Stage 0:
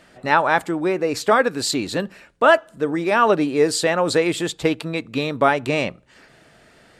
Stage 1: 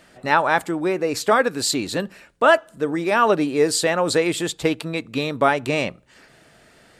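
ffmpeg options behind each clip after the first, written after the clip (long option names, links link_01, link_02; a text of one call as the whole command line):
ffmpeg -i in.wav -af "highshelf=frequency=7300:gain=6,volume=-1dB" out.wav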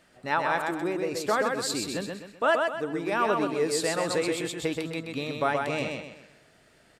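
ffmpeg -i in.wav -af "aecho=1:1:128|256|384|512|640:0.631|0.24|0.0911|0.0346|0.0132,volume=-9dB" out.wav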